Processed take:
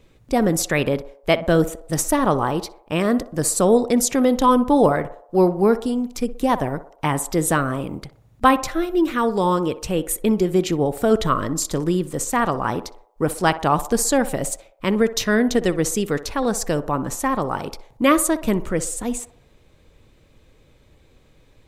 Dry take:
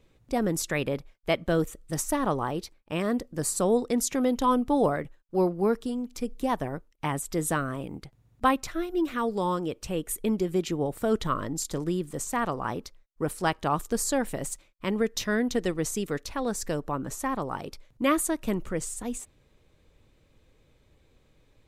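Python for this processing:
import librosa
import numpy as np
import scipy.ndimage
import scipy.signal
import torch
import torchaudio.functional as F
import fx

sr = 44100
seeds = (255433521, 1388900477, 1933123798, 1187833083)

y = fx.echo_banded(x, sr, ms=62, feedback_pct=58, hz=710.0, wet_db=-12.5)
y = y * 10.0 ** (8.0 / 20.0)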